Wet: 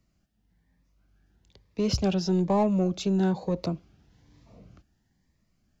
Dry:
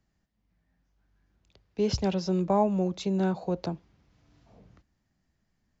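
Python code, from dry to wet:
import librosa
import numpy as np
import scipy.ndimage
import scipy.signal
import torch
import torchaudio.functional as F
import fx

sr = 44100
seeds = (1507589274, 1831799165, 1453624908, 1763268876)

p1 = 10.0 ** (-28.0 / 20.0) * np.tanh(x / 10.0 ** (-28.0 / 20.0))
p2 = x + F.gain(torch.from_numpy(p1), -3.0).numpy()
y = fx.notch_cascade(p2, sr, direction='rising', hz=1.1)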